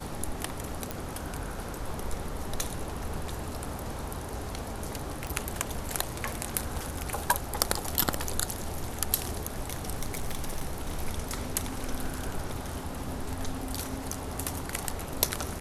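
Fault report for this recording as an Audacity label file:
0.910000	0.910000	pop
5.270000	5.270000	pop
10.010000	11.020000	clipped -26 dBFS

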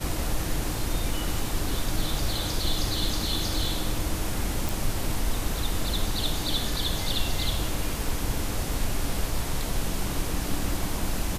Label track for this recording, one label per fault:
4.690000	4.690000	pop

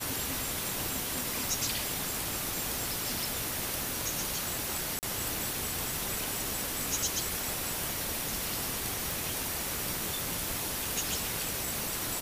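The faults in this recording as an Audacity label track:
4.990000	5.030000	dropout 38 ms
9.110000	9.110000	pop

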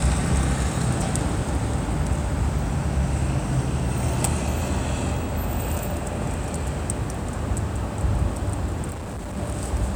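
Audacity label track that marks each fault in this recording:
8.900000	9.370000	clipped -29 dBFS

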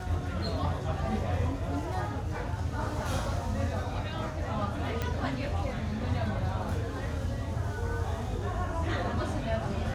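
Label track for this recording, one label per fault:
5.020000	5.020000	pop -17 dBFS

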